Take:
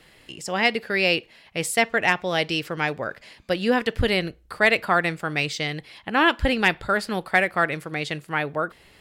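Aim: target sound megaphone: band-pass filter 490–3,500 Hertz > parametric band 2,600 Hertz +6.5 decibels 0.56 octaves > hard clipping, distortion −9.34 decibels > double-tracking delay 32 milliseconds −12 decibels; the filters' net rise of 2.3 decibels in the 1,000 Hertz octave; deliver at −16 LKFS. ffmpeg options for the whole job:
ffmpeg -i in.wav -filter_complex "[0:a]highpass=490,lowpass=3500,equalizer=frequency=1000:width_type=o:gain=3.5,equalizer=frequency=2600:width_type=o:width=0.56:gain=6.5,asoftclip=type=hard:threshold=-14dB,asplit=2[link_01][link_02];[link_02]adelay=32,volume=-12dB[link_03];[link_01][link_03]amix=inputs=2:normalize=0,volume=7dB" out.wav

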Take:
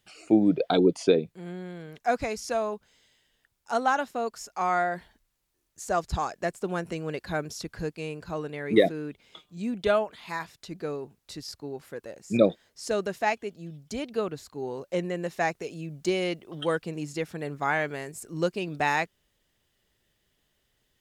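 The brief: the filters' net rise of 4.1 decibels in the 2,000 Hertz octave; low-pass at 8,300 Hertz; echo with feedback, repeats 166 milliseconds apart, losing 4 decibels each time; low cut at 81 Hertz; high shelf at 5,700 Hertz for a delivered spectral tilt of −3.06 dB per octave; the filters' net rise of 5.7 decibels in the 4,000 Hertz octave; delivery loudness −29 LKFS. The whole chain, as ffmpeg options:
ffmpeg -i in.wav -af "highpass=81,lowpass=8300,equalizer=frequency=2000:width_type=o:gain=4,equalizer=frequency=4000:width_type=o:gain=8,highshelf=frequency=5700:gain=-6,aecho=1:1:166|332|498|664|830|996|1162|1328|1494:0.631|0.398|0.25|0.158|0.0994|0.0626|0.0394|0.0249|0.0157,volume=-2.5dB" out.wav

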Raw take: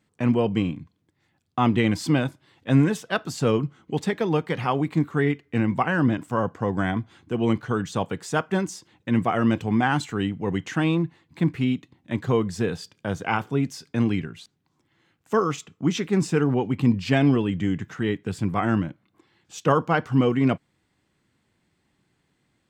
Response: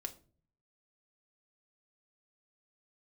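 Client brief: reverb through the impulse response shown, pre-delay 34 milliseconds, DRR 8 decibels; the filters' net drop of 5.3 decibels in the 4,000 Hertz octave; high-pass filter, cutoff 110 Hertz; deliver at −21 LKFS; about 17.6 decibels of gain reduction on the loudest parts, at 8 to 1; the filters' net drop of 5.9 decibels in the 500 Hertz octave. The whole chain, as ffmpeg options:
-filter_complex "[0:a]highpass=110,equalizer=frequency=500:width_type=o:gain=-7.5,equalizer=frequency=4000:width_type=o:gain=-7.5,acompressor=threshold=-35dB:ratio=8,asplit=2[link_01][link_02];[1:a]atrim=start_sample=2205,adelay=34[link_03];[link_02][link_03]afir=irnorm=-1:irlink=0,volume=-5.5dB[link_04];[link_01][link_04]amix=inputs=2:normalize=0,volume=18.5dB"

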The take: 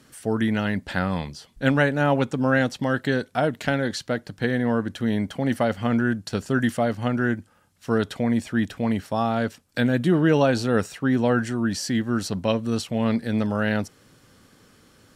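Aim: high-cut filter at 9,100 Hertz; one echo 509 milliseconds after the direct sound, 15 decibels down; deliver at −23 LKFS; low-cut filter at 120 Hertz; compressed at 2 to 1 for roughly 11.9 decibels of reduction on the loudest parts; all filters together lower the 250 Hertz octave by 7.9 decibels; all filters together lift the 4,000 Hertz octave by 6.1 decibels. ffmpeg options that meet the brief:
ffmpeg -i in.wav -af "highpass=120,lowpass=9100,equalizer=frequency=250:width_type=o:gain=-9,equalizer=frequency=4000:width_type=o:gain=8,acompressor=threshold=-39dB:ratio=2,aecho=1:1:509:0.178,volume=13dB" out.wav

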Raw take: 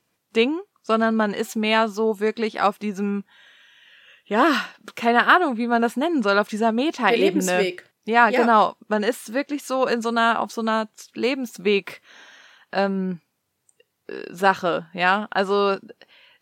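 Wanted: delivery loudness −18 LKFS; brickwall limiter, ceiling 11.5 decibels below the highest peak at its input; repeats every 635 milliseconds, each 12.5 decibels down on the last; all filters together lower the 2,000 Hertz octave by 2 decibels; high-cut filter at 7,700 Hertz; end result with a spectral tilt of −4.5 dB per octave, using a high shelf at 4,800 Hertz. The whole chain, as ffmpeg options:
ffmpeg -i in.wav -af "lowpass=7700,equalizer=frequency=2000:width_type=o:gain=-4,highshelf=frequency=4800:gain=7.5,alimiter=limit=-15.5dB:level=0:latency=1,aecho=1:1:635|1270|1905:0.237|0.0569|0.0137,volume=8dB" out.wav

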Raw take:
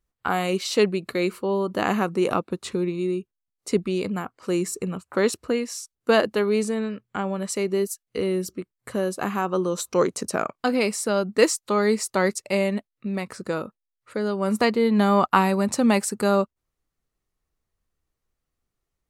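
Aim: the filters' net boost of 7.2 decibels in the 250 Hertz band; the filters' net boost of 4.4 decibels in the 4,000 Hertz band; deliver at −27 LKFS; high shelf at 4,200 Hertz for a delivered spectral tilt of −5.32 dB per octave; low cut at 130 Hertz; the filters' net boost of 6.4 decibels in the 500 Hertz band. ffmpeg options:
ffmpeg -i in.wav -af "highpass=130,equalizer=frequency=250:width_type=o:gain=9,equalizer=frequency=500:width_type=o:gain=5,equalizer=frequency=4000:width_type=o:gain=8.5,highshelf=frequency=4200:gain=-5.5,volume=-8.5dB" out.wav

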